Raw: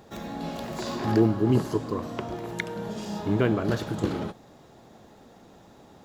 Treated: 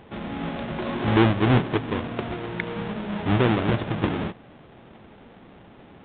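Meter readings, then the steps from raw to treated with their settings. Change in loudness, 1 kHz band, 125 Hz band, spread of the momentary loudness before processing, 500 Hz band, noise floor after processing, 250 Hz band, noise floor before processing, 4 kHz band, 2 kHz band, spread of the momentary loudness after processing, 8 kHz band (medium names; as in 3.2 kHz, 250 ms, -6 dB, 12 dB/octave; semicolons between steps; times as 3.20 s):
+3.0 dB, +5.5 dB, +4.5 dB, 12 LU, +1.5 dB, -49 dBFS, +2.0 dB, -53 dBFS, +6.0 dB, +7.5 dB, 11 LU, under -35 dB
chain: square wave that keeps the level; trim -1 dB; A-law 64 kbps 8 kHz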